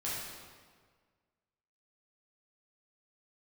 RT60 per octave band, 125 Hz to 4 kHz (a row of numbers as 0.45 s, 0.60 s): 1.8 s, 1.7 s, 1.7 s, 1.6 s, 1.4 s, 1.2 s